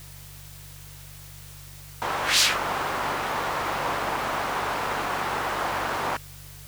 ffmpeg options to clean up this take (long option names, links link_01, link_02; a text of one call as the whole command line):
ffmpeg -i in.wav -af "bandreject=frequency=48.4:width_type=h:width=4,bandreject=frequency=96.8:width_type=h:width=4,bandreject=frequency=145.2:width_type=h:width=4,afwtdn=0.0045" out.wav